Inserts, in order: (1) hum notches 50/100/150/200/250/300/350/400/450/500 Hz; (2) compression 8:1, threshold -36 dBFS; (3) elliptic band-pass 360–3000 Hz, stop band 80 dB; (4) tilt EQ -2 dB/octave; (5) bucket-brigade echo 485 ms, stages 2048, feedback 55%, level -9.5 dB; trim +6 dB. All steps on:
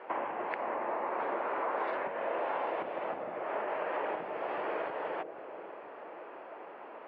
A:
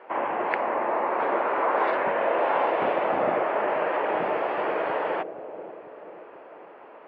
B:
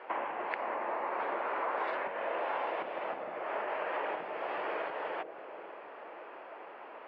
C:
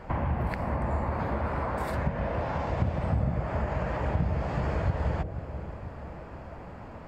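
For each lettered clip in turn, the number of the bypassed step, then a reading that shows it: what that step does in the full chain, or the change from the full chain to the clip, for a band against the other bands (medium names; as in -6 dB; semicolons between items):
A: 2, momentary loudness spread change +3 LU; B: 4, 4 kHz band +4.0 dB; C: 3, 125 Hz band +34.0 dB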